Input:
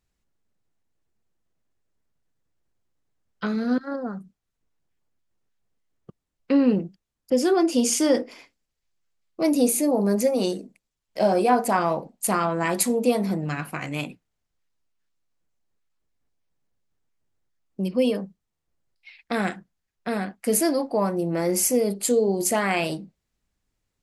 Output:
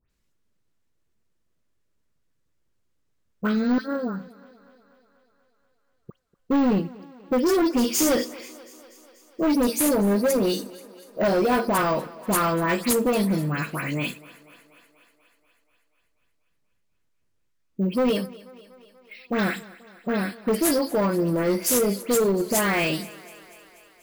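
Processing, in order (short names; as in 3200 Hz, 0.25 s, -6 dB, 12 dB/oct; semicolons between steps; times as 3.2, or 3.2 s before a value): bell 770 Hz -9 dB 0.25 oct; dispersion highs, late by 0.106 s, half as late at 2500 Hz; hard clip -20.5 dBFS, distortion -10 dB; on a send: thinning echo 0.242 s, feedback 68%, high-pass 210 Hz, level -20 dB; on the sum: careless resampling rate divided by 2×, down none, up hold; gain +3 dB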